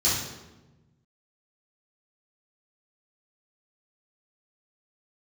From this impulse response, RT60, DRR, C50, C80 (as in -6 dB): 1.1 s, -11.5 dB, 1.0 dB, 4.5 dB